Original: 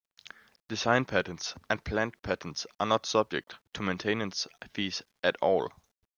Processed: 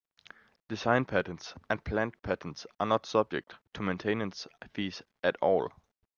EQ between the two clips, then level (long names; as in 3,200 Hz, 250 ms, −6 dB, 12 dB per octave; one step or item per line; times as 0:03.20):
low-pass filter 1,800 Hz 6 dB per octave
0.0 dB